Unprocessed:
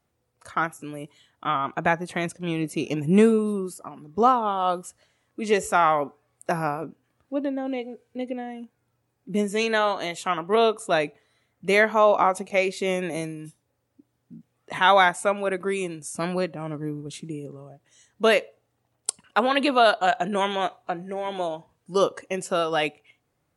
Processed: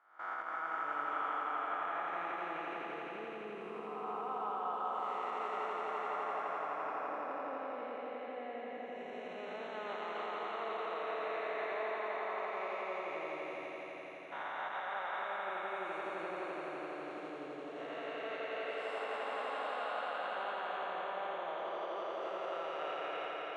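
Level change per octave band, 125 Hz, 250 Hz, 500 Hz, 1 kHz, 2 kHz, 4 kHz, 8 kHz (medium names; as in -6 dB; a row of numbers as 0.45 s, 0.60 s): -30.0 dB, -22.5 dB, -15.5 dB, -12.5 dB, -13.5 dB, -18.0 dB, under -30 dB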